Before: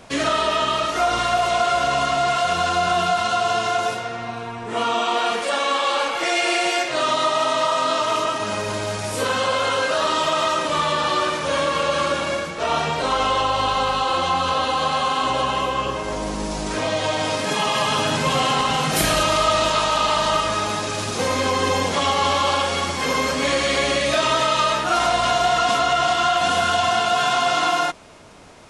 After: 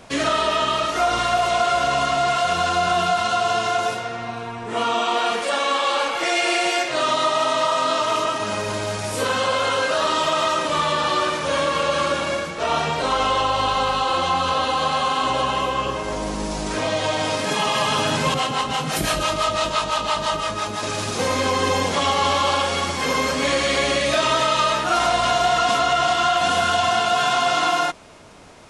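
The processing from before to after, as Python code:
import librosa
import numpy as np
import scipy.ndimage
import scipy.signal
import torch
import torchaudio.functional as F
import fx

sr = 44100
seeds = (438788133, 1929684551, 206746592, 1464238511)

y = fx.harmonic_tremolo(x, sr, hz=5.9, depth_pct=70, crossover_hz=510.0, at=(18.34, 20.83))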